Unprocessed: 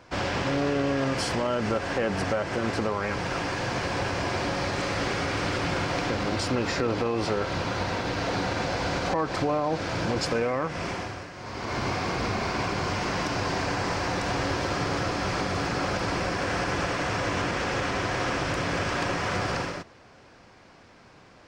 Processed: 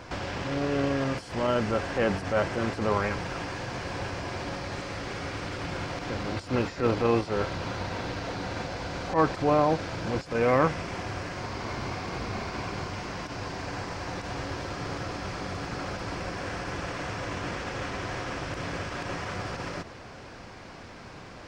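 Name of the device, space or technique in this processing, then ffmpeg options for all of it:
de-esser from a sidechain: -filter_complex "[0:a]lowshelf=f=100:g=5,asplit=2[a][b];[b]highpass=f=4.8k:w=0.5412,highpass=f=4.8k:w=1.3066,apad=whole_len=947088[c];[a][c]sidechaincompress=threshold=-53dB:ratio=16:attack=0.81:release=79,volume=7.5dB"

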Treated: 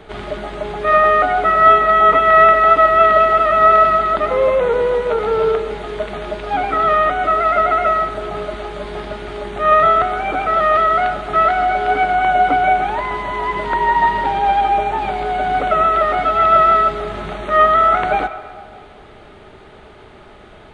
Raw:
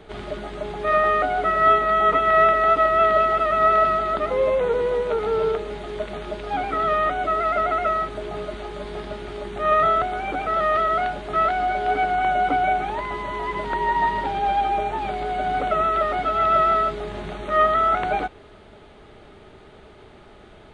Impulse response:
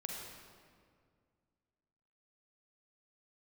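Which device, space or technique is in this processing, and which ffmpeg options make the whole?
filtered reverb send: -filter_complex "[0:a]asplit=2[a][b];[b]highpass=530,lowpass=3.3k[c];[1:a]atrim=start_sample=2205[d];[c][d]afir=irnorm=-1:irlink=0,volume=-6dB[e];[a][e]amix=inputs=2:normalize=0,volume=4.5dB"

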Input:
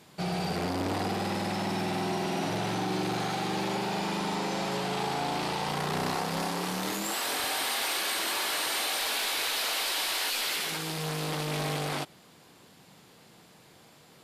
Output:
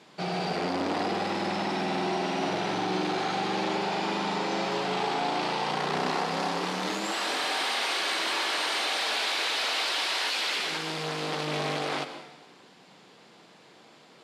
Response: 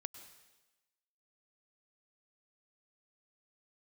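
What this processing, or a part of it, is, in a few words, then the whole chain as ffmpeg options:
supermarket ceiling speaker: -filter_complex "[0:a]highpass=220,lowpass=5.4k[a];[1:a]atrim=start_sample=2205[b];[a][b]afir=irnorm=-1:irlink=0,volume=6.5dB"

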